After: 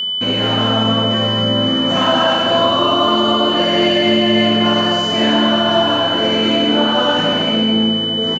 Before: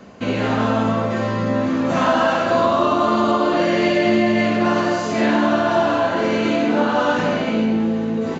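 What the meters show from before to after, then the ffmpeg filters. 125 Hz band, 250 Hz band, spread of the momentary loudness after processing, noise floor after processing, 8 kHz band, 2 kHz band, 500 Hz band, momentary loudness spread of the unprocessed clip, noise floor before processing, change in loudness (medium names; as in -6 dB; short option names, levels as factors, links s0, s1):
+3.0 dB, +2.5 dB, 2 LU, -18 dBFS, no reading, +2.0 dB, +2.0 dB, 4 LU, -23 dBFS, +4.5 dB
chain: -af "aecho=1:1:209:0.398,aeval=exprs='sgn(val(0))*max(abs(val(0))-0.00376,0)':c=same,aeval=exprs='val(0)+0.112*sin(2*PI*3000*n/s)':c=same,volume=1.19"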